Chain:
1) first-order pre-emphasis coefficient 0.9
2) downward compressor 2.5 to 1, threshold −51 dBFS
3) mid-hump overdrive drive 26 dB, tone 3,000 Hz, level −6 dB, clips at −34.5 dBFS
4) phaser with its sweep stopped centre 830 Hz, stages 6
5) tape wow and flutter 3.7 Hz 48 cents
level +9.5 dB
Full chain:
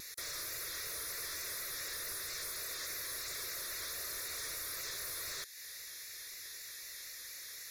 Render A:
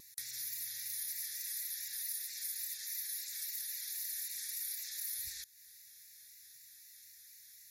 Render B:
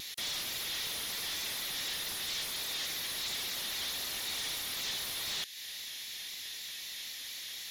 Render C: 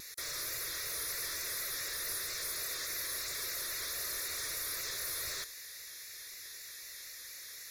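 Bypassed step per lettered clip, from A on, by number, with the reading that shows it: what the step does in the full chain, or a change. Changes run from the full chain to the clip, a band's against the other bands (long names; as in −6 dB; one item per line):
3, change in crest factor +5.0 dB
4, change in crest factor −2.5 dB
2, average gain reduction 7.0 dB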